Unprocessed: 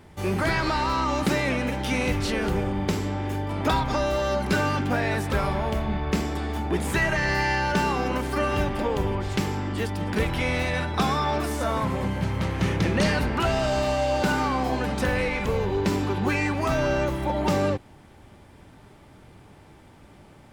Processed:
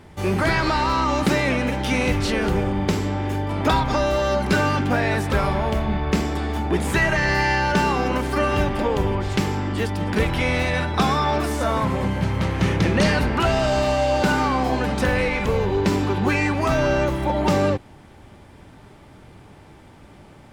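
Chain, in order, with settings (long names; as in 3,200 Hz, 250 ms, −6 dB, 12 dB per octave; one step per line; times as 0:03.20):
high-shelf EQ 11,000 Hz −5 dB
level +4 dB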